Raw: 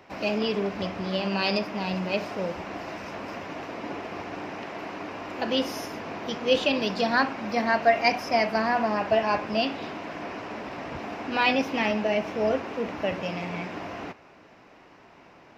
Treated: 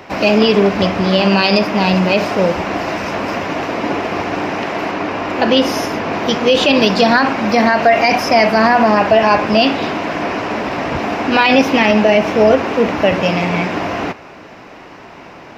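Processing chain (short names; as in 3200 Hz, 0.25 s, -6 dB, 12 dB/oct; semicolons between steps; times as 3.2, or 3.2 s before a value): 4.91–6.13 high shelf 6800 Hz -7 dB; maximiser +17 dB; gain -1 dB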